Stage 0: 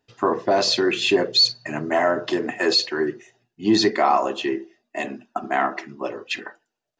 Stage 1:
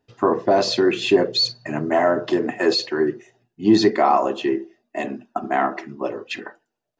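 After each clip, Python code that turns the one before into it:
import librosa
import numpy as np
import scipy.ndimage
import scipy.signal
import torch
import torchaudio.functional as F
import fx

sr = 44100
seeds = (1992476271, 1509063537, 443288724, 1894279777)

y = fx.tilt_shelf(x, sr, db=4.0, hz=1200.0)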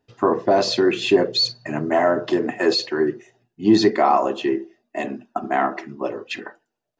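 y = x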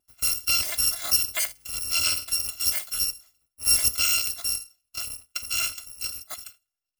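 y = fx.bit_reversed(x, sr, seeds[0], block=256)
y = F.gain(torch.from_numpy(y), -6.5).numpy()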